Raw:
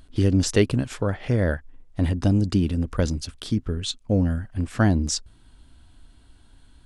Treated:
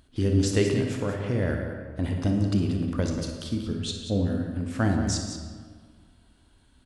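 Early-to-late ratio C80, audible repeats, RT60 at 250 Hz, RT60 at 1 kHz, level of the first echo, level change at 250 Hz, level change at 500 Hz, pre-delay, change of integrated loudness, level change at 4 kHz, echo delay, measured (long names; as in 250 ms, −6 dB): 4.5 dB, 2, 1.9 s, 1.8 s, −12.0 dB, −2.5 dB, −2.0 dB, 23 ms, −3.0 dB, −3.0 dB, 56 ms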